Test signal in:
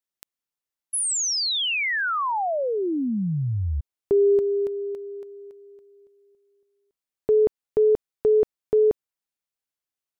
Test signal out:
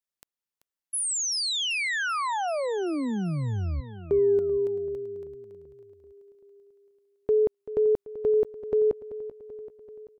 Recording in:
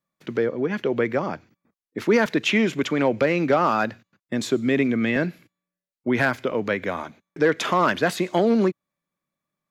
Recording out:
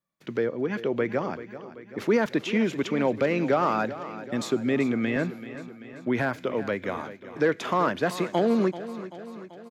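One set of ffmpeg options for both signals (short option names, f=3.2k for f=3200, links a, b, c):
-filter_complex "[0:a]acrossover=split=1200[a][b];[b]alimiter=limit=-21dB:level=0:latency=1:release=199[c];[a][c]amix=inputs=2:normalize=0,aecho=1:1:386|772|1158|1544|1930|2316:0.2|0.12|0.0718|0.0431|0.0259|0.0155,volume=-3.5dB"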